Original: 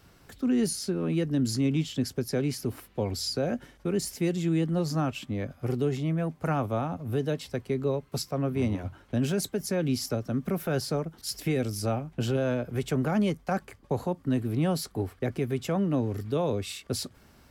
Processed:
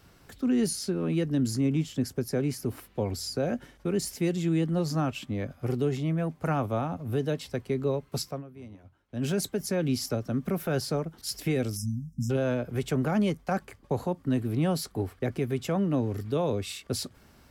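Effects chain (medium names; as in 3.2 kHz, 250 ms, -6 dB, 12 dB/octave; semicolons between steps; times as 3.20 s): 1.45–3.40 s: dynamic bell 3.6 kHz, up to -7 dB, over -48 dBFS, Q 1.1; 8.27–9.28 s: dip -18 dB, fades 0.17 s; 11.77–12.30 s: spectral selection erased 270–5000 Hz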